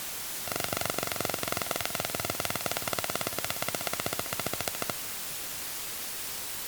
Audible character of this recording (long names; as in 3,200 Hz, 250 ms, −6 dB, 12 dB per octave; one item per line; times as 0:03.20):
a buzz of ramps at a fixed pitch in blocks of 64 samples
chopped level 4.2 Hz, depth 65%, duty 80%
a quantiser's noise floor 6 bits, dither triangular
MP3